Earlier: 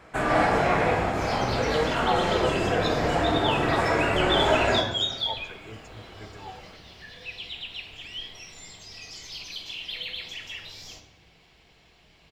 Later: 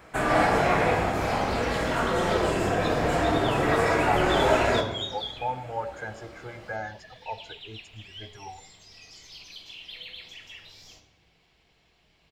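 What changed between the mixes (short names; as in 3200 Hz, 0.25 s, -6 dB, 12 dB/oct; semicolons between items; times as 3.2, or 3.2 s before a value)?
speech: entry +2.00 s; first sound: add high shelf 11000 Hz +11.5 dB; second sound -7.0 dB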